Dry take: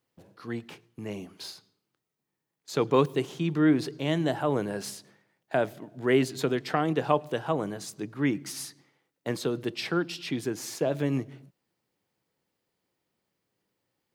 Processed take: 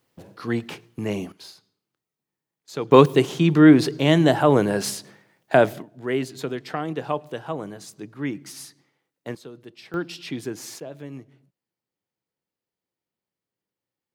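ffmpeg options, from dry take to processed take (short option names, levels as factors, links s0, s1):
-af "asetnsamples=n=441:p=0,asendcmd='1.32 volume volume -2.5dB;2.92 volume volume 10dB;5.82 volume volume -2dB;9.35 volume volume -12dB;9.94 volume volume 0dB;10.8 volume volume -10dB',volume=2.99"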